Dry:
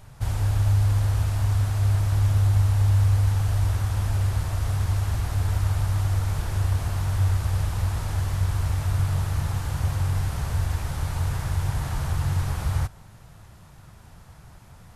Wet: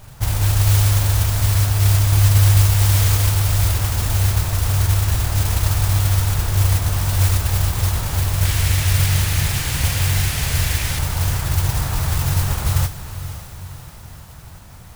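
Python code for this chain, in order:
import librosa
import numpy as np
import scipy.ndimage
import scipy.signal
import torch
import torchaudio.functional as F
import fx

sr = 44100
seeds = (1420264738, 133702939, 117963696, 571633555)

y = fx.high_shelf_res(x, sr, hz=1600.0, db=9.5, q=1.5, at=(8.45, 10.99))
y = fx.mod_noise(y, sr, seeds[0], snr_db=11)
y = fx.echo_diffused(y, sr, ms=540, feedback_pct=52, wet_db=-12.5)
y = y * 10.0 ** (5.5 / 20.0)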